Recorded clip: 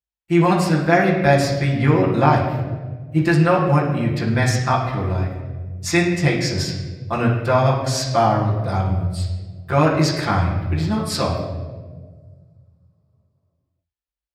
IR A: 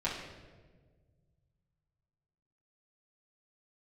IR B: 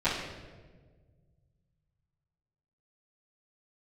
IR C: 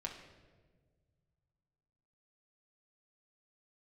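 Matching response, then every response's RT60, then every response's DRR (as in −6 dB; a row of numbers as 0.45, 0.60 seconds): A; 1.5, 1.5, 1.5 seconds; −8.5, −16.0, −0.5 decibels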